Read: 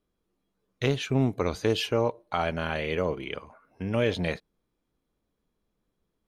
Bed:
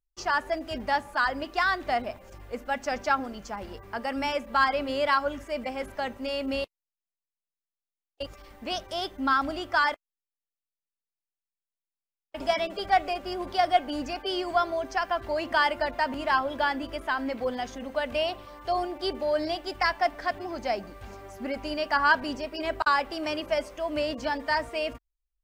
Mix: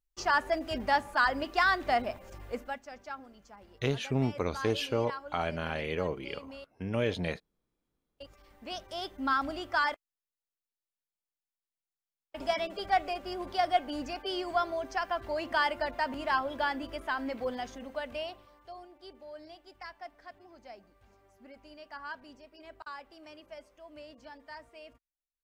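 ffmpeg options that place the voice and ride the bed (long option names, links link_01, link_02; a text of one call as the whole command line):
ffmpeg -i stem1.wav -i stem2.wav -filter_complex "[0:a]adelay=3000,volume=-4.5dB[link_01];[1:a]volume=11.5dB,afade=type=out:start_time=2.51:duration=0.3:silence=0.158489,afade=type=in:start_time=7.96:duration=1.35:silence=0.251189,afade=type=out:start_time=17.54:duration=1.21:silence=0.16788[link_02];[link_01][link_02]amix=inputs=2:normalize=0" out.wav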